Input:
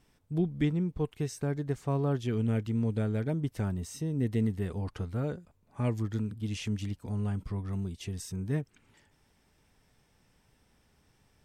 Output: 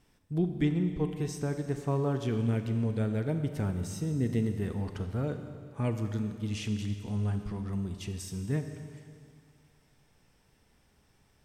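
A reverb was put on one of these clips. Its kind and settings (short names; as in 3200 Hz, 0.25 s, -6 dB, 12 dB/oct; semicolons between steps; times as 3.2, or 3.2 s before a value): Schroeder reverb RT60 2.3 s, combs from 30 ms, DRR 7 dB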